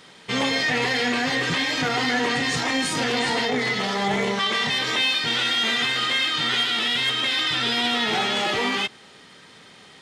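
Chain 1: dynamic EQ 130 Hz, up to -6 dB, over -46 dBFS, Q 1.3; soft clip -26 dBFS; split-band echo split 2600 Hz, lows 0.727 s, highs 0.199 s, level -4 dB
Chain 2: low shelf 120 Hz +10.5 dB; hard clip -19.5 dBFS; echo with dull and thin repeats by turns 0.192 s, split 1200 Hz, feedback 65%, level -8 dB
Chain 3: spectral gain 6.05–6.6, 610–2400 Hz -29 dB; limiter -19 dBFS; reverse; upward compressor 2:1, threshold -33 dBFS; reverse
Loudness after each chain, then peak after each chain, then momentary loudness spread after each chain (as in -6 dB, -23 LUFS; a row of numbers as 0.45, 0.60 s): -25.5, -22.0, -26.0 LUFS; -16.5, -14.0, -19.0 dBFS; 5, 4, 6 LU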